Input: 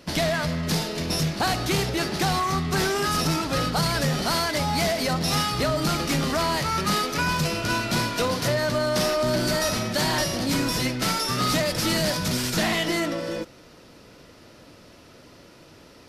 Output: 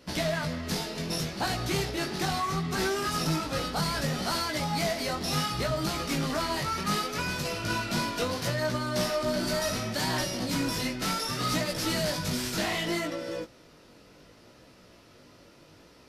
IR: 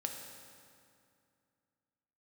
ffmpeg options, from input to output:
-af "flanger=delay=15.5:depth=5.7:speed=0.68,volume=-2.5dB"

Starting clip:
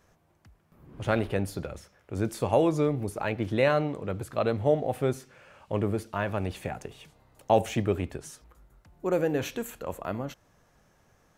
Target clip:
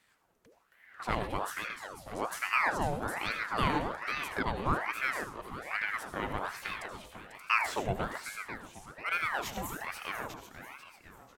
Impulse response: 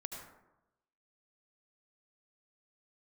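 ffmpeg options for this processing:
-filter_complex "[0:a]asplit=6[link_01][link_02][link_03][link_04][link_05][link_06];[link_02]adelay=494,afreqshift=130,volume=-10dB[link_07];[link_03]adelay=988,afreqshift=260,volume=-16.6dB[link_08];[link_04]adelay=1482,afreqshift=390,volume=-23.1dB[link_09];[link_05]adelay=1976,afreqshift=520,volume=-29.7dB[link_10];[link_06]adelay=2470,afreqshift=650,volume=-36.2dB[link_11];[link_01][link_07][link_08][link_09][link_10][link_11]amix=inputs=6:normalize=0,asplit=2[link_12][link_13];[1:a]atrim=start_sample=2205,atrim=end_sample=6174,highshelf=frequency=2400:gain=10.5[link_14];[link_13][link_14]afir=irnorm=-1:irlink=0,volume=2dB[link_15];[link_12][link_15]amix=inputs=2:normalize=0,aeval=exprs='val(0)*sin(2*PI*1100*n/s+1100*0.75/1.2*sin(2*PI*1.2*n/s))':channel_layout=same,volume=-9dB"

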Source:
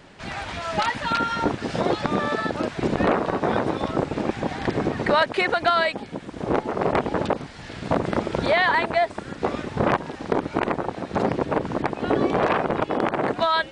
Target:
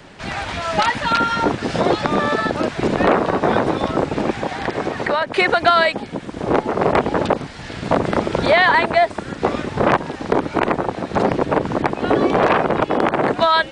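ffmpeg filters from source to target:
ffmpeg -i in.wav -filter_complex "[0:a]asettb=1/sr,asplit=3[link_01][link_02][link_03];[link_01]atrim=end=4.334[link_04];[link_02]atrim=start=4.33:end=5.33,asetpts=PTS-STARTPTS,afade=type=in:duration=0.004:curve=qsin,afade=type=out:start_time=0.996:duration=0.004:curve=qsin,acrossover=split=420|2400[link_05][link_06][link_07];[link_05]acompressor=threshold=-35dB:ratio=4[link_08];[link_06]acompressor=threshold=-24dB:ratio=4[link_09];[link_07]acompressor=threshold=-41dB:ratio=4[link_10];[link_08][link_09][link_10]amix=inputs=3:normalize=0[link_11];[link_03]atrim=start=5.326[link_12];[link_04][link_11]acrossfade=duration=0.004:curve1=hsin:curve2=qsin[link_13];[link_13][link_12]acrossfade=duration=0.004:curve1=qsin:curve2=hsin,acrossover=split=330|580|1400[link_14][link_15][link_16][link_17];[link_14]asoftclip=type=hard:threshold=-26dB[link_18];[link_18][link_15][link_16][link_17]amix=inputs=4:normalize=0,volume=6dB" out.wav

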